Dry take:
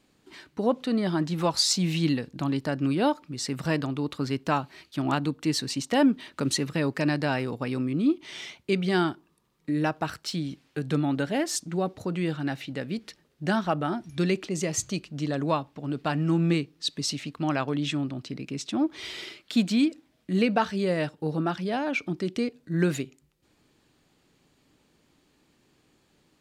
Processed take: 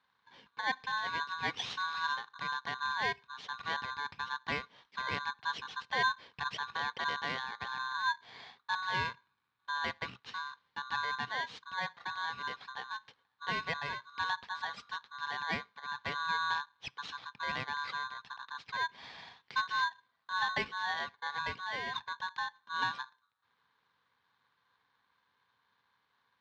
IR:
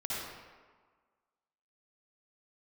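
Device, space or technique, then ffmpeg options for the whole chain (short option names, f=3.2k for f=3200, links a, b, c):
ring modulator pedal into a guitar cabinet: -af "lowpass=5.5k,aeval=exprs='val(0)*sgn(sin(2*PI*1300*n/s))':c=same,highpass=88,equalizer=f=130:t=q:w=4:g=4,equalizer=f=340:t=q:w=4:g=-9,equalizer=f=620:t=q:w=4:g=-9,equalizer=f=1.4k:t=q:w=4:g=-5,equalizer=f=2.7k:t=q:w=4:g=-5,lowpass=f=3.9k:w=0.5412,lowpass=f=3.9k:w=1.3066,volume=-7dB"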